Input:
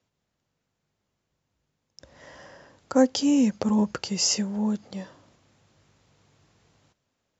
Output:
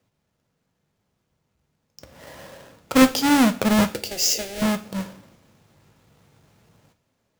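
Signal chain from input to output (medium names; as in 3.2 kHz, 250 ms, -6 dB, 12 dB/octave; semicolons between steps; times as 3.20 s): square wave that keeps the level; 3.88–4.62 s: static phaser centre 450 Hz, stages 4; two-slope reverb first 0.4 s, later 2.1 s, from -27 dB, DRR 7.5 dB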